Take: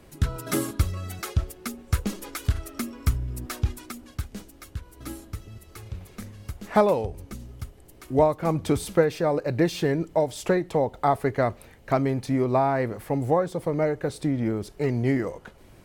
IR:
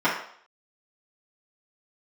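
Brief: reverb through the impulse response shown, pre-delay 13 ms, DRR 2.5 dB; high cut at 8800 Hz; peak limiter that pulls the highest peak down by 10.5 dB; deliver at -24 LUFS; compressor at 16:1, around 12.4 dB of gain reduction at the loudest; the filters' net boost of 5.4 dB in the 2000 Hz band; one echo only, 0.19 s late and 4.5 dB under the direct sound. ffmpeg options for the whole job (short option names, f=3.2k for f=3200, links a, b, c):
-filter_complex "[0:a]lowpass=8.8k,equalizer=f=2k:t=o:g=6.5,acompressor=threshold=-27dB:ratio=16,alimiter=level_in=1dB:limit=-24dB:level=0:latency=1,volume=-1dB,aecho=1:1:190:0.596,asplit=2[a][b];[1:a]atrim=start_sample=2205,adelay=13[c];[b][c]afir=irnorm=-1:irlink=0,volume=-20dB[d];[a][d]amix=inputs=2:normalize=0,volume=10dB"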